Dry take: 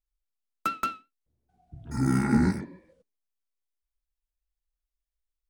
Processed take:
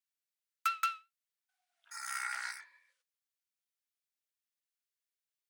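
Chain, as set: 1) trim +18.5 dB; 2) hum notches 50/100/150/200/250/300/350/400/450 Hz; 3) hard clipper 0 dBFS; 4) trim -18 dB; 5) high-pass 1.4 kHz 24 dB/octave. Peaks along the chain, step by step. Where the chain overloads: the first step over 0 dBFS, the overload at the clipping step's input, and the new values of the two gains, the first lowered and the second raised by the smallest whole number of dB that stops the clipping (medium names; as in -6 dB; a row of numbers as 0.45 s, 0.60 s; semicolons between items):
+7.0 dBFS, +6.5 dBFS, 0.0 dBFS, -18.0 dBFS, -19.5 dBFS; step 1, 6.5 dB; step 1 +11.5 dB, step 4 -11 dB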